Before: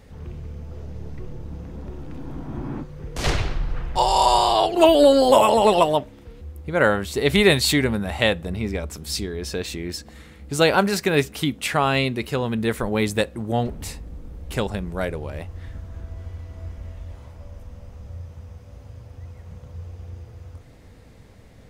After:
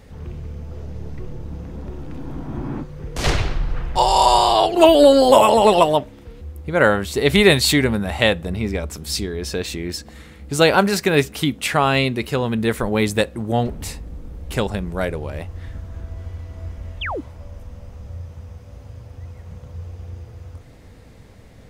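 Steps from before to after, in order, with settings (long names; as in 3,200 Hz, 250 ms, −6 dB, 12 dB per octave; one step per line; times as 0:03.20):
sound drawn into the spectrogram fall, 0:17.01–0:17.21, 240–3,700 Hz −29 dBFS
level +3 dB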